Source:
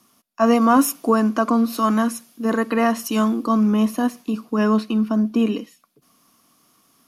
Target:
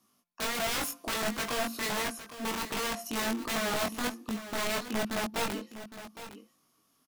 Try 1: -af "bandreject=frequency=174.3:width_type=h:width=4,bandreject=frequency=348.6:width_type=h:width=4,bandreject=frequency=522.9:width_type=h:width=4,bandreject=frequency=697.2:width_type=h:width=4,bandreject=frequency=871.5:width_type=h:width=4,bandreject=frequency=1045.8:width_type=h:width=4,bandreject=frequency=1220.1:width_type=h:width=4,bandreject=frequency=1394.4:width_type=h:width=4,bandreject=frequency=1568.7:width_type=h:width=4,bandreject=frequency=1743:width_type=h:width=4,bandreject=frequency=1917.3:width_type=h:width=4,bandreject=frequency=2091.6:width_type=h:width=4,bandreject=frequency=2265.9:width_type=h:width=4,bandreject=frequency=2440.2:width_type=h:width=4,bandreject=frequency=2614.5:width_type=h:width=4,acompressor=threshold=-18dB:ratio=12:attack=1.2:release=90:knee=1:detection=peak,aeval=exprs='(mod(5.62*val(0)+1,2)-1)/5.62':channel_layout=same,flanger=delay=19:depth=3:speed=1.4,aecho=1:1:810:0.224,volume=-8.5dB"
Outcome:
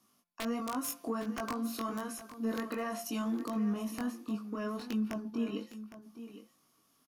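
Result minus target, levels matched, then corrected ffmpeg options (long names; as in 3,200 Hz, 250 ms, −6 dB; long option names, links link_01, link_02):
downward compressor: peak gain reduction +10.5 dB
-af "bandreject=frequency=174.3:width_type=h:width=4,bandreject=frequency=348.6:width_type=h:width=4,bandreject=frequency=522.9:width_type=h:width=4,bandreject=frequency=697.2:width_type=h:width=4,bandreject=frequency=871.5:width_type=h:width=4,bandreject=frequency=1045.8:width_type=h:width=4,bandreject=frequency=1220.1:width_type=h:width=4,bandreject=frequency=1394.4:width_type=h:width=4,bandreject=frequency=1568.7:width_type=h:width=4,bandreject=frequency=1743:width_type=h:width=4,bandreject=frequency=1917.3:width_type=h:width=4,bandreject=frequency=2091.6:width_type=h:width=4,bandreject=frequency=2265.9:width_type=h:width=4,bandreject=frequency=2440.2:width_type=h:width=4,bandreject=frequency=2614.5:width_type=h:width=4,aeval=exprs='(mod(5.62*val(0)+1,2)-1)/5.62':channel_layout=same,flanger=delay=19:depth=3:speed=1.4,aecho=1:1:810:0.224,volume=-8.5dB"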